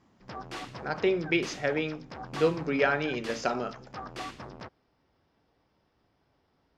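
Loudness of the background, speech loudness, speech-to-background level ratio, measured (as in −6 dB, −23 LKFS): −42.5 LKFS, −29.5 LKFS, 13.0 dB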